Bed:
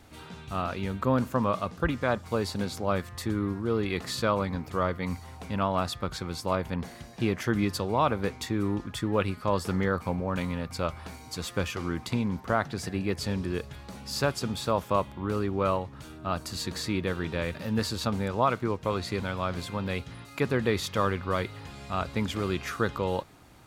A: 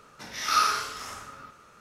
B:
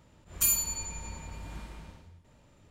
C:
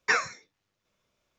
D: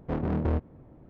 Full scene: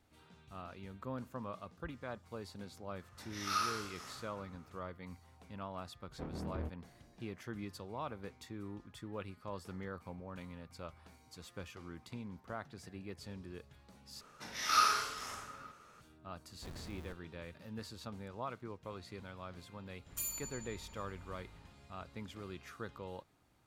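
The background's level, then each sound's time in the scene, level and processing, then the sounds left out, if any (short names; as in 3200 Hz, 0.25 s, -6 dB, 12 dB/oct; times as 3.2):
bed -17.5 dB
2.99 add A -12 dB
6.1 add D -14.5 dB
14.21 replace with A -5.5 dB
16.53 add D -17.5 dB + Schmitt trigger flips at -28.5 dBFS
19.76 add B -13 dB + soft clip -17.5 dBFS
not used: C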